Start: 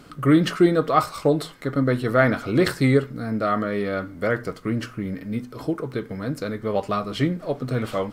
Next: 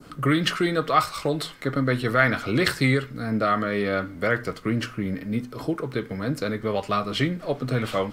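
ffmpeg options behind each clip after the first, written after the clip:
ffmpeg -i in.wav -filter_complex "[0:a]adynamicequalizer=threshold=0.01:dfrequency=2800:dqfactor=0.73:tfrequency=2800:tqfactor=0.73:attack=5:release=100:ratio=0.375:range=2:mode=boostabove:tftype=bell,acrossover=split=110|1100[link_01][link_02][link_03];[link_02]alimiter=limit=-17dB:level=0:latency=1:release=400[link_04];[link_01][link_04][link_03]amix=inputs=3:normalize=0,volume=1dB" out.wav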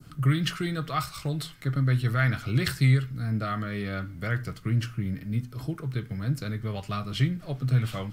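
ffmpeg -i in.wav -af "equalizer=frequency=125:width_type=o:width=1:gain=7,equalizer=frequency=250:width_type=o:width=1:gain=-7,equalizer=frequency=500:width_type=o:width=1:gain=-12,equalizer=frequency=1000:width_type=o:width=1:gain=-8,equalizer=frequency=2000:width_type=o:width=1:gain=-5,equalizer=frequency=4000:width_type=o:width=1:gain=-4,equalizer=frequency=8000:width_type=o:width=1:gain=-3" out.wav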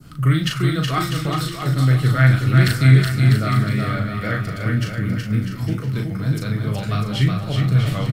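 ffmpeg -i in.wav -filter_complex "[0:a]asplit=2[link_01][link_02];[link_02]adelay=38,volume=-4.5dB[link_03];[link_01][link_03]amix=inputs=2:normalize=0,aecho=1:1:370|647.5|855.6|1012|1129:0.631|0.398|0.251|0.158|0.1,volume=5dB" out.wav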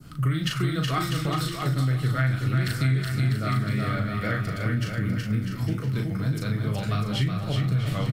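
ffmpeg -i in.wav -af "acompressor=threshold=-19dB:ratio=4,volume=-2.5dB" out.wav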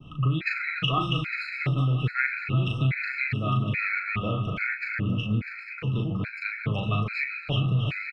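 ffmpeg -i in.wav -af "lowpass=frequency=2500:width_type=q:width=8,bandreject=frequency=86.92:width_type=h:width=4,bandreject=frequency=173.84:width_type=h:width=4,bandreject=frequency=260.76:width_type=h:width=4,afftfilt=real='re*gt(sin(2*PI*1.2*pts/sr)*(1-2*mod(floor(b*sr/1024/1300),2)),0)':imag='im*gt(sin(2*PI*1.2*pts/sr)*(1-2*mod(floor(b*sr/1024/1300),2)),0)':win_size=1024:overlap=0.75" out.wav

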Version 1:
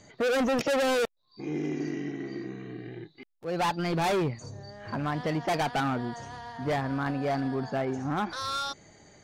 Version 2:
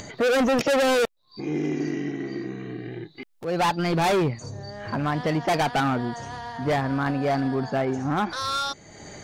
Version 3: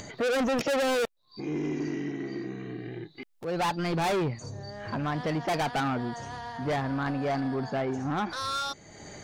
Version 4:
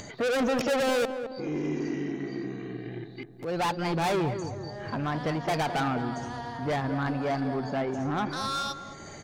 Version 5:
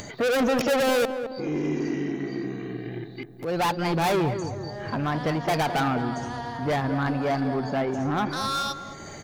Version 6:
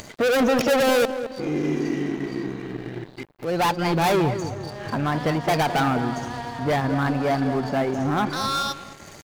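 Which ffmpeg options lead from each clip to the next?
ffmpeg -i in.wav -af "acompressor=mode=upward:threshold=-36dB:ratio=2.5,volume=5dB" out.wav
ffmpeg -i in.wav -af "asoftclip=type=tanh:threshold=-20dB,volume=-3dB" out.wav
ffmpeg -i in.wav -filter_complex "[0:a]asplit=2[link_01][link_02];[link_02]adelay=213,lowpass=frequency=1300:poles=1,volume=-8dB,asplit=2[link_03][link_04];[link_04]adelay=213,lowpass=frequency=1300:poles=1,volume=0.55,asplit=2[link_05][link_06];[link_06]adelay=213,lowpass=frequency=1300:poles=1,volume=0.55,asplit=2[link_07][link_08];[link_08]adelay=213,lowpass=frequency=1300:poles=1,volume=0.55,asplit=2[link_09][link_10];[link_10]adelay=213,lowpass=frequency=1300:poles=1,volume=0.55,asplit=2[link_11][link_12];[link_12]adelay=213,lowpass=frequency=1300:poles=1,volume=0.55,asplit=2[link_13][link_14];[link_14]adelay=213,lowpass=frequency=1300:poles=1,volume=0.55[link_15];[link_01][link_03][link_05][link_07][link_09][link_11][link_13][link_15]amix=inputs=8:normalize=0" out.wav
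ffmpeg -i in.wav -af "aexciter=amount=1:drive=9.1:freq=11000,volume=3.5dB" out.wav
ffmpeg -i in.wav -af "aeval=exprs='sgn(val(0))*max(abs(val(0))-0.00841,0)':channel_layout=same,volume=4dB" out.wav

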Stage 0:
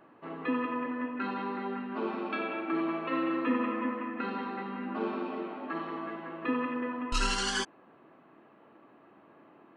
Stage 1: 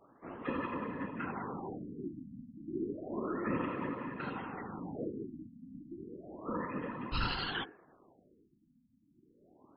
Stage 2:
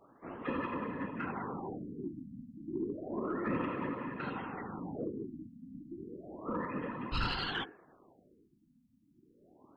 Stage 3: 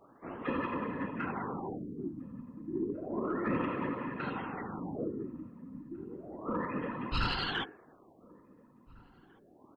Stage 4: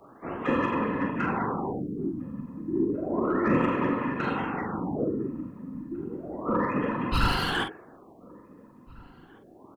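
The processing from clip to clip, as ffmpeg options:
ffmpeg -i in.wav -af "bandreject=frequency=129:width_type=h:width=4,bandreject=frequency=258:width_type=h:width=4,bandreject=frequency=387:width_type=h:width=4,bandreject=frequency=516:width_type=h:width=4,bandreject=frequency=645:width_type=h:width=4,bandreject=frequency=774:width_type=h:width=4,bandreject=frequency=903:width_type=h:width=4,bandreject=frequency=1032:width_type=h:width=4,bandreject=frequency=1161:width_type=h:width=4,bandreject=frequency=1290:width_type=h:width=4,bandreject=frequency=1419:width_type=h:width=4,bandreject=frequency=1548:width_type=h:width=4,bandreject=frequency=1677:width_type=h:width=4,bandreject=frequency=1806:width_type=h:width=4,bandreject=frequency=1935:width_type=h:width=4,bandreject=frequency=2064:width_type=h:width=4,bandreject=frequency=2193:width_type=h:width=4,afftfilt=real='hypot(re,im)*cos(2*PI*random(0))':imag='hypot(re,im)*sin(2*PI*random(1))':win_size=512:overlap=0.75,afftfilt=real='re*lt(b*sr/1024,280*pow(5300/280,0.5+0.5*sin(2*PI*0.31*pts/sr)))':imag='im*lt(b*sr/1024,280*pow(5300/280,0.5+0.5*sin(2*PI*0.31*pts/sr)))':win_size=1024:overlap=0.75,volume=1dB" out.wav
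ffmpeg -i in.wav -af "asoftclip=type=tanh:threshold=-22.5dB,volume=1dB" out.wav
ffmpeg -i in.wav -filter_complex "[0:a]asplit=2[link_01][link_02];[link_02]adelay=1749,volume=-23dB,highshelf=frequency=4000:gain=-39.4[link_03];[link_01][link_03]amix=inputs=2:normalize=0,volume=2dB" out.wav
ffmpeg -i in.wav -filter_complex "[0:a]acrossover=split=300|1800[link_01][link_02][link_03];[link_03]asoftclip=type=tanh:threshold=-40dB[link_04];[link_01][link_02][link_04]amix=inputs=3:normalize=0,asplit=2[link_05][link_06];[link_06]adelay=43,volume=-6dB[link_07];[link_05][link_07]amix=inputs=2:normalize=0,volume=7.5dB" out.wav

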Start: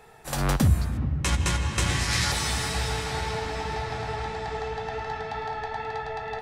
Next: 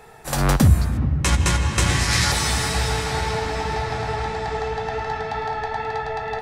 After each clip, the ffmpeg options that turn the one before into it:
ffmpeg -i in.wav -af "equalizer=frequency=3100:width_type=o:width=0.77:gain=-2,volume=6dB" out.wav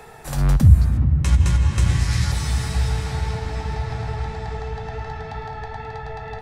ffmpeg -i in.wav -filter_complex "[0:a]acrossover=split=160[link_01][link_02];[link_02]acompressor=threshold=-46dB:ratio=2[link_03];[link_01][link_03]amix=inputs=2:normalize=0,volume=4.5dB" out.wav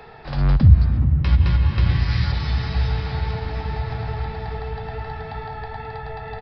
ffmpeg -i in.wav -af "aresample=11025,aresample=44100" out.wav

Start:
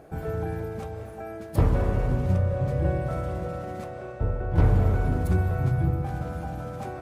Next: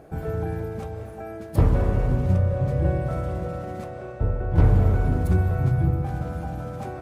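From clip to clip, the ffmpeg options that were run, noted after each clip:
ffmpeg -i in.wav -af "lowshelf=frequency=440:gain=3" out.wav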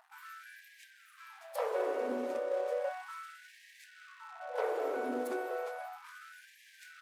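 ffmpeg -i in.wav -af "equalizer=frequency=200:width_type=o:width=0.33:gain=7,equalizer=frequency=315:width_type=o:width=0.33:gain=-9,equalizer=frequency=500:width_type=o:width=0.33:gain=5,aeval=exprs='sgn(val(0))*max(abs(val(0))-0.00501,0)':channel_layout=same,afftfilt=real='re*gte(b*sr/1024,240*pow(1600/240,0.5+0.5*sin(2*PI*0.34*pts/sr)))':imag='im*gte(b*sr/1024,240*pow(1600/240,0.5+0.5*sin(2*PI*0.34*pts/sr)))':win_size=1024:overlap=0.75,volume=-4dB" out.wav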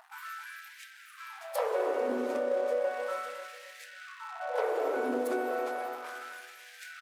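ffmpeg -i in.wav -filter_complex "[0:a]asplit=2[link_01][link_02];[link_02]adelay=272,lowpass=frequency=2000:poles=1,volume=-9.5dB,asplit=2[link_03][link_04];[link_04]adelay=272,lowpass=frequency=2000:poles=1,volume=0.35,asplit=2[link_05][link_06];[link_06]adelay=272,lowpass=frequency=2000:poles=1,volume=0.35,asplit=2[link_07][link_08];[link_08]adelay=272,lowpass=frequency=2000:poles=1,volume=0.35[link_09];[link_03][link_05][link_07][link_09]amix=inputs=4:normalize=0[link_10];[link_01][link_10]amix=inputs=2:normalize=0,acompressor=threshold=-37dB:ratio=2,volume=7.5dB" out.wav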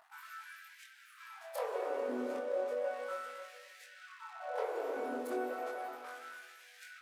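ffmpeg -i in.wav -af "flanger=delay=19.5:depth=6.7:speed=0.31,volume=-3.5dB" out.wav

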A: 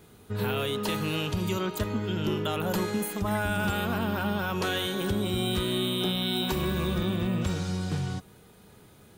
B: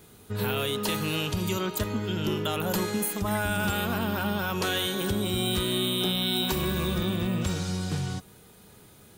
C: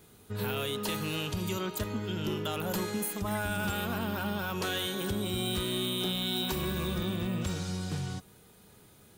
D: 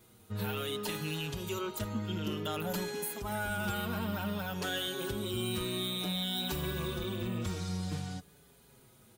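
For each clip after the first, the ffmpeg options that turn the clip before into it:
ffmpeg -i in.wav -af "highshelf=frequency=4000:gain=6.5" out.wav
ffmpeg -i in.wav -af "asoftclip=type=hard:threshold=-20.5dB,volume=-4.5dB" out.wav
ffmpeg -i in.wav -filter_complex "[0:a]asplit=2[link_01][link_02];[link_02]adelay=5.8,afreqshift=-0.55[link_03];[link_01][link_03]amix=inputs=2:normalize=1" out.wav

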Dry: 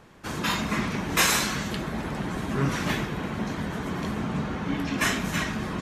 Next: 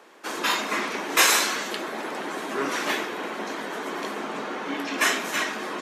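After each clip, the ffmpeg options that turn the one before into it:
ffmpeg -i in.wav -af "highpass=frequency=320:width=0.5412,highpass=frequency=320:width=1.3066,volume=3.5dB" out.wav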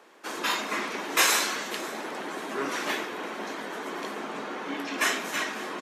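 ffmpeg -i in.wav -af "aecho=1:1:544:0.112,volume=-3.5dB" out.wav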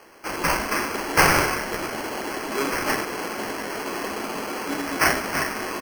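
ffmpeg -i in.wav -af "acrusher=samples=12:mix=1:aa=0.000001,volume=5.5dB" out.wav

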